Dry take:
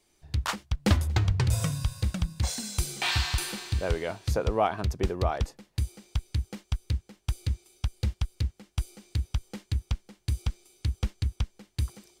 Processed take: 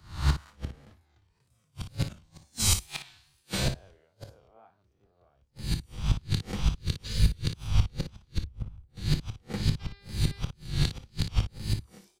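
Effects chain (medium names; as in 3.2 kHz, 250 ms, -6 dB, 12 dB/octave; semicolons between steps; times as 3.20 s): reverse spectral sustain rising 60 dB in 0.95 s; 1.46–2.23 s: transient shaper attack -11 dB, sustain +3 dB; 7.06–7.37 s: spectral replace 400–7900 Hz after; 8.38–8.90 s: tilt EQ -2.5 dB/octave; wow and flutter 74 cents; inverted gate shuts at -18 dBFS, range -28 dB; 9.79–10.43 s: mains buzz 400 Hz, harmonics 13, -54 dBFS 0 dB/octave; early reflections 27 ms -12.5 dB, 58 ms -9.5 dB; three bands expanded up and down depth 100%; trim +2 dB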